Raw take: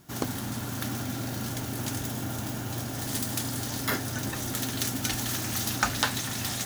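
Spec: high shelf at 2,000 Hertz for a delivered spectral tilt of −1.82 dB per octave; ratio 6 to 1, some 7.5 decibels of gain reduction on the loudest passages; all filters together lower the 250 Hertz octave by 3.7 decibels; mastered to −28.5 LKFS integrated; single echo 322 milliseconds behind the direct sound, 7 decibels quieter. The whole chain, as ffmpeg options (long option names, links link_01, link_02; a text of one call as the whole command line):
ffmpeg -i in.wav -af "equalizer=frequency=250:width_type=o:gain=-4.5,highshelf=frequency=2000:gain=6.5,acompressor=threshold=-27dB:ratio=6,aecho=1:1:322:0.447,volume=0.5dB" out.wav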